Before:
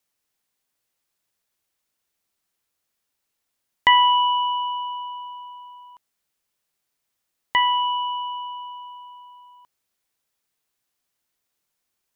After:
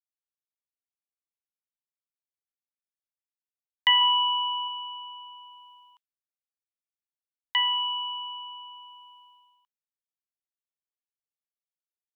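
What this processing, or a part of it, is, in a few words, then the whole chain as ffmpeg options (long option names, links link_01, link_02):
headphones lying on a table: -filter_complex "[0:a]highpass=frequency=1000:width=0.5412,highpass=frequency=1000:width=1.3066,equalizer=frequency=3100:width_type=o:width=0.54:gain=9,agate=range=-33dB:threshold=-44dB:ratio=3:detection=peak,asettb=1/sr,asplit=3[link_01][link_02][link_03];[link_01]atrim=end=4.014[link_04];[link_02]atrim=start=4.01:end=4.68,asetpts=PTS-STARTPTS,afade=type=in:duration=0.004:curve=qsin,afade=type=out:start_time=0.666:duration=0.004:curve=qsin,equalizer=frequency=530:width_type=o:width=1.3:gain=8.5[link_05];[link_03]atrim=start=4.676[link_06];[link_04][link_05]acrossfade=duration=0.004:curve1=hsin:curve2=qsin[link_07];[link_07][link_06]acrossfade=duration=0.004:curve1=qsin:curve2=hsin,volume=-7.5dB"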